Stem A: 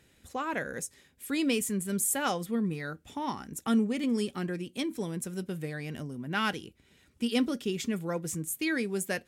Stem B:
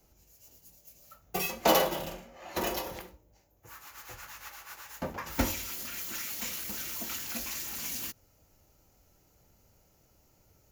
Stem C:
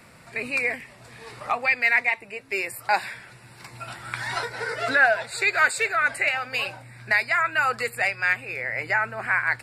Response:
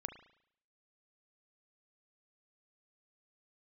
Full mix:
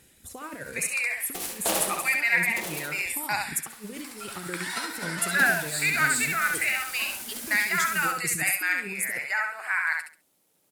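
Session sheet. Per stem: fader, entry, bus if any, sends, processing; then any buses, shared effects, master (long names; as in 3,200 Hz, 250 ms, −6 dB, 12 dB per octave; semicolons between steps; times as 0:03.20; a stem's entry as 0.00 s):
−2.5 dB, 0.00 s, no send, echo send −9.5 dB, reverb reduction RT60 0.73 s; compressor whose output falls as the input rises −36 dBFS, ratio −0.5
−6.0 dB, 0.00 s, no send, echo send −6 dB, high-pass filter 180 Hz 24 dB per octave; short delay modulated by noise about 2,300 Hz, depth 0.11 ms
−4.5 dB, 0.40 s, no send, echo send −3.5 dB, high-pass filter 990 Hz 12 dB per octave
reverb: not used
echo: repeating echo 68 ms, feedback 24%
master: parametric band 11,000 Hz +12 dB 1.2 octaves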